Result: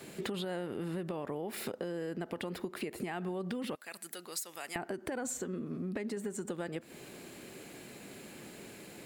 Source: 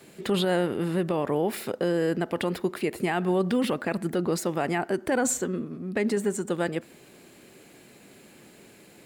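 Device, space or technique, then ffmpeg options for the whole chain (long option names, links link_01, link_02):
serial compression, peaks first: -filter_complex "[0:a]asettb=1/sr,asplit=3[link_01][link_02][link_03];[link_01]atrim=end=3.754[link_04];[link_02]atrim=start=3.75:end=4.76,asetpts=PTS-STARTPTS,afade=type=in:duration=0.004:curve=qsin,afade=type=out:start_time=1.006:duration=0.004:curve=qsin,aderivative[link_05];[link_03]atrim=start=4.756[link_06];[link_04][link_05]acrossfade=duration=0.004:curve1=hsin:curve2=qsin[link_07];[link_07][link_06]acrossfade=duration=0.004:curve1=qsin:curve2=hsin,acompressor=threshold=-34dB:ratio=6,acompressor=threshold=-38dB:ratio=2.5,volume=2.5dB"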